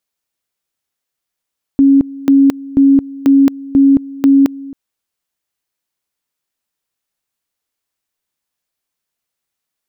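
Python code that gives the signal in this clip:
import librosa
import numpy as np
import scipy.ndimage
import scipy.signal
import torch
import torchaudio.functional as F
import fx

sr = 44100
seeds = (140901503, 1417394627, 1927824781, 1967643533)

y = fx.two_level_tone(sr, hz=275.0, level_db=-4.5, drop_db=20.5, high_s=0.22, low_s=0.27, rounds=6)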